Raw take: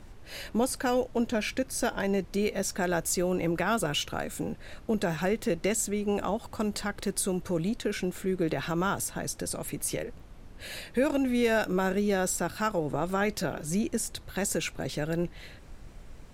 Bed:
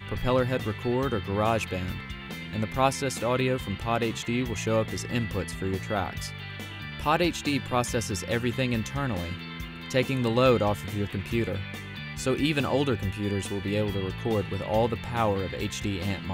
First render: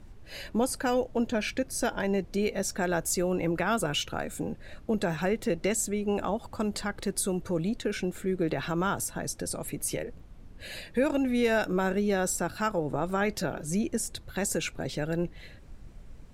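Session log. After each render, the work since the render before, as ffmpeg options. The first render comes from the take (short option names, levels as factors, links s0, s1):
-af "afftdn=nr=6:nf=-48"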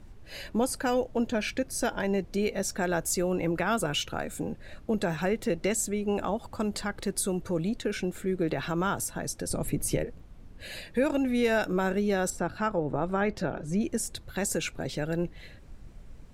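-filter_complex "[0:a]asettb=1/sr,asplit=3[s0][s1][s2];[s0]atrim=end=9.504[s3];[s1]atrim=start=9.5:end=10.05,asetpts=PTS-STARTPTS,afade=t=in:d=0.004:c=qsin,afade=t=out:st=0.546:d=0.004:c=qsin,lowshelf=f=410:g=9[s4];[s2]atrim=start=10.046[s5];[s3][s4]acrossfade=d=0.004:c1=hsin:c2=qsin[s6];[s6][s5]acrossfade=d=0.004:c1=qsin:c2=hsin,asettb=1/sr,asplit=3[s7][s8][s9];[s7]atrim=end=12.304[s10];[s8]atrim=start=12.3:end=13.81,asetpts=PTS-STARTPTS,afade=t=in:d=0.004:c=qsin,afade=t=out:st=1.506:d=0.004:c=qsin,aemphasis=mode=reproduction:type=75fm[s11];[s9]atrim=start=13.806[s12];[s10][s11]acrossfade=d=0.004:c1=hsin:c2=qsin[s13];[s13][s12]acrossfade=d=0.004:c1=qsin:c2=hsin"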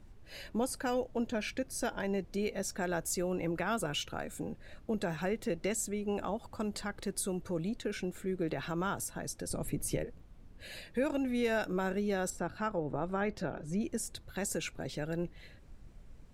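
-af "volume=0.501"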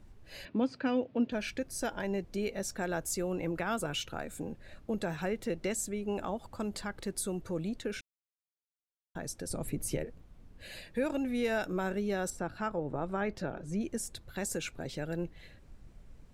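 -filter_complex "[0:a]asettb=1/sr,asplit=3[s0][s1][s2];[s0]atrim=end=0.454[s3];[s1]atrim=start=0.45:end=1.32,asetpts=PTS-STARTPTS,afade=t=in:d=0.004:c=qsin,afade=t=out:st=0.866:d=0.004:c=qsin,highpass=f=100:w=0.5412,highpass=f=100:w=1.3066,equalizer=f=260:t=q:w=4:g=8,equalizer=f=820:t=q:w=4:g=-5,equalizer=f=2500:t=q:w=4:g=5,lowpass=f=4300:w=0.5412,lowpass=f=4300:w=1.3066[s4];[s2]atrim=start=1.316[s5];[s3][s4]acrossfade=d=0.004:c1=hsin:c2=qsin[s6];[s6][s5]acrossfade=d=0.004:c1=qsin:c2=hsin,asplit=3[s7][s8][s9];[s7]atrim=end=8.01,asetpts=PTS-STARTPTS,afade=t=out:st=8.006:d=0.004:c=hsin[s10];[s8]atrim=start=8.01:end=9.15,asetpts=PTS-STARTPTS,volume=0[s11];[s9]atrim=start=9.15,asetpts=PTS-STARTPTS,afade=t=in:d=0.004:c=hsin[s12];[s10][s11][s12]concat=n=3:v=0:a=1"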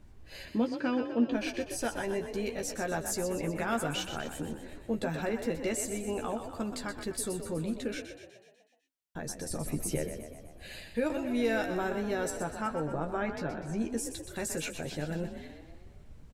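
-filter_complex "[0:a]asplit=2[s0][s1];[s1]adelay=13,volume=0.501[s2];[s0][s2]amix=inputs=2:normalize=0,asplit=8[s3][s4][s5][s6][s7][s8][s9][s10];[s4]adelay=124,afreqshift=38,volume=0.355[s11];[s5]adelay=248,afreqshift=76,volume=0.202[s12];[s6]adelay=372,afreqshift=114,volume=0.115[s13];[s7]adelay=496,afreqshift=152,volume=0.0661[s14];[s8]adelay=620,afreqshift=190,volume=0.0376[s15];[s9]adelay=744,afreqshift=228,volume=0.0214[s16];[s10]adelay=868,afreqshift=266,volume=0.0122[s17];[s3][s11][s12][s13][s14][s15][s16][s17]amix=inputs=8:normalize=0"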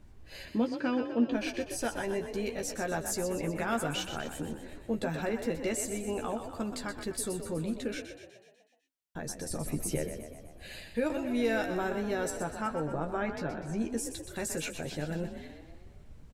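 -af anull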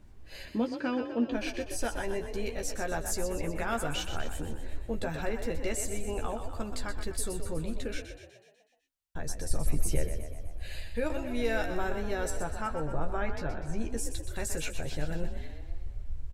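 -af "asubboost=boost=8.5:cutoff=68"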